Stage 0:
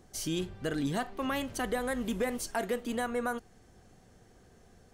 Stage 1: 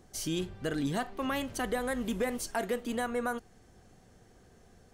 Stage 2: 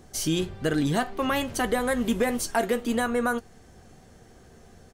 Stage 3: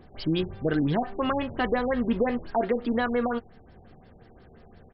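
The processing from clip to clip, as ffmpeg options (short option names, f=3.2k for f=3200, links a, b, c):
-af anull
-filter_complex "[0:a]asplit=2[a][b];[b]adelay=13,volume=-11.5dB[c];[a][c]amix=inputs=2:normalize=0,volume=7dB"
-af "afftfilt=real='re*lt(b*sr/1024,880*pow(5500/880,0.5+0.5*sin(2*PI*5.7*pts/sr)))':imag='im*lt(b*sr/1024,880*pow(5500/880,0.5+0.5*sin(2*PI*5.7*pts/sr)))':win_size=1024:overlap=0.75"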